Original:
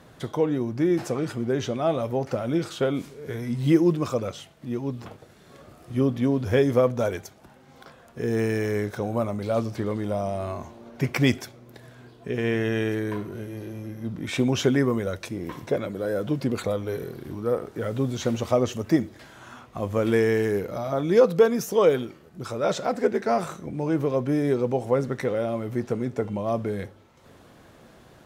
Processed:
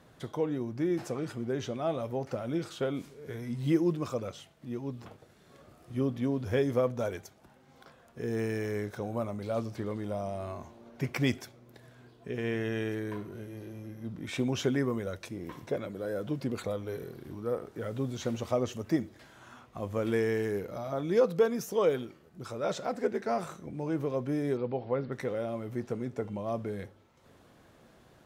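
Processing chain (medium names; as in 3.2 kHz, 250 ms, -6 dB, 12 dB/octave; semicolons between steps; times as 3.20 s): 24.57–25.12 s: elliptic low-pass 4.6 kHz, stop band 40 dB; trim -7.5 dB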